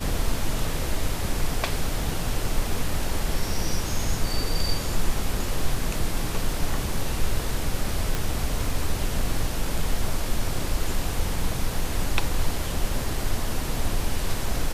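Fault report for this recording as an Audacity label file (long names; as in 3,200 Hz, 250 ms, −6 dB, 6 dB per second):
8.150000	8.150000	click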